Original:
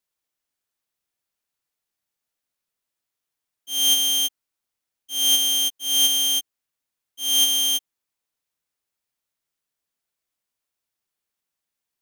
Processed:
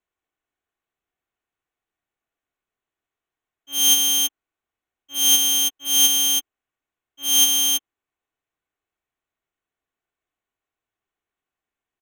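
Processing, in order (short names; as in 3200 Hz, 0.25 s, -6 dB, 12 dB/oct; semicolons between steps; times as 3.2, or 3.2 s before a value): Wiener smoothing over 9 samples; comb 2.7 ms, depth 35%; gain +4 dB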